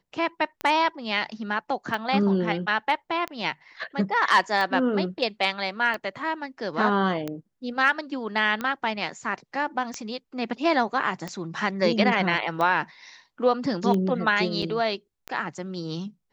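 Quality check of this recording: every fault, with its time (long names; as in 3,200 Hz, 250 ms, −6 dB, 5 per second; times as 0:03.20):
scratch tick 45 rpm −16 dBFS
0:14.62: drop-out 4.2 ms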